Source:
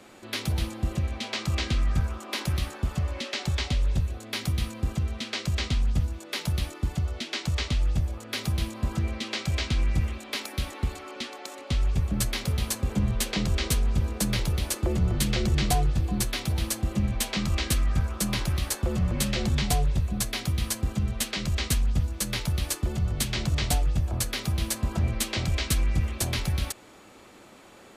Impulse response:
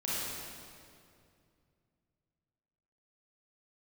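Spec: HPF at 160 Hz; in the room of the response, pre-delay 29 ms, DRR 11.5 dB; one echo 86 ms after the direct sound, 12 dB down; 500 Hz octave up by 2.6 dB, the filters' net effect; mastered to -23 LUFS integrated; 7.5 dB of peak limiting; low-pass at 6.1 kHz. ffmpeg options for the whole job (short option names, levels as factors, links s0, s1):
-filter_complex "[0:a]highpass=160,lowpass=6100,equalizer=f=500:t=o:g=3.5,alimiter=limit=0.0944:level=0:latency=1,aecho=1:1:86:0.251,asplit=2[s0][s1];[1:a]atrim=start_sample=2205,adelay=29[s2];[s1][s2]afir=irnorm=-1:irlink=0,volume=0.133[s3];[s0][s3]amix=inputs=2:normalize=0,volume=3.16"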